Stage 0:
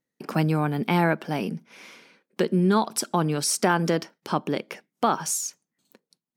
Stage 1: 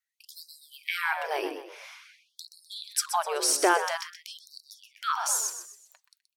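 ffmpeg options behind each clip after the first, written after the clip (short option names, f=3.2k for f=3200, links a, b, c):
-filter_complex "[0:a]asplit=5[a][b][c][d][e];[b]adelay=126,afreqshift=63,volume=-10dB[f];[c]adelay=252,afreqshift=126,volume=-18.4dB[g];[d]adelay=378,afreqshift=189,volume=-26.8dB[h];[e]adelay=504,afreqshift=252,volume=-35.2dB[i];[a][f][g][h][i]amix=inputs=5:normalize=0,afftfilt=real='re*gte(b*sr/1024,290*pow(3900/290,0.5+0.5*sin(2*PI*0.49*pts/sr)))':imag='im*gte(b*sr/1024,290*pow(3900/290,0.5+0.5*sin(2*PI*0.49*pts/sr)))':win_size=1024:overlap=0.75"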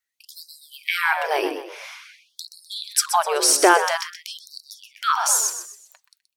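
-af "dynaudnorm=f=290:g=5:m=3.5dB,volume=4.5dB"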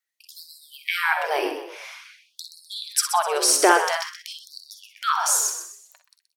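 -filter_complex "[0:a]highpass=200,asplit=2[a][b];[b]aecho=0:1:49|61:0.237|0.299[c];[a][c]amix=inputs=2:normalize=0,volume=-2dB"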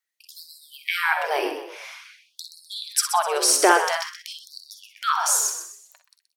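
-af "highpass=230"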